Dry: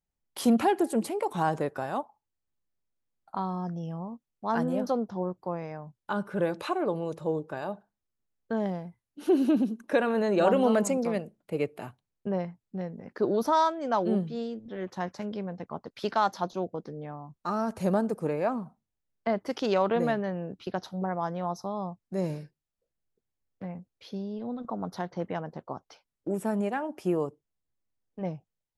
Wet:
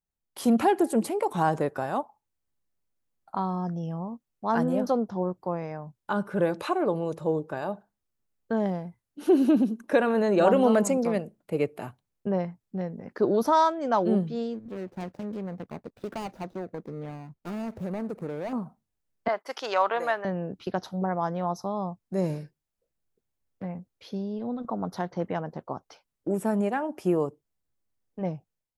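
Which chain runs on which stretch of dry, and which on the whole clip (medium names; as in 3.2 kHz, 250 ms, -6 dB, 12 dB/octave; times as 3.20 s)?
14.54–18.53 s: median filter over 41 samples + compression 3:1, threshold -34 dBFS
19.28–20.25 s: high-pass 730 Hz + expander -49 dBFS + dynamic bell 1.2 kHz, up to +5 dB, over -41 dBFS, Q 0.73
whole clip: peaking EQ 3.5 kHz -2.5 dB 1.8 oct; level rider gain up to 7 dB; trim -4 dB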